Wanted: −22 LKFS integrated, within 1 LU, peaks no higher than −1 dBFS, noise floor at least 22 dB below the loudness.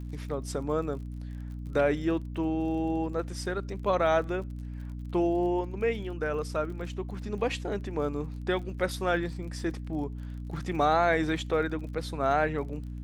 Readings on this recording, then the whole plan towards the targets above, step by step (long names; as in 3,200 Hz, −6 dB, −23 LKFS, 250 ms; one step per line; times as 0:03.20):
crackle rate 38 per second; mains hum 60 Hz; hum harmonics up to 300 Hz; level of the hum −35 dBFS; integrated loudness −30.5 LKFS; sample peak −12.5 dBFS; target loudness −22.0 LKFS
→ click removal
mains-hum notches 60/120/180/240/300 Hz
level +8.5 dB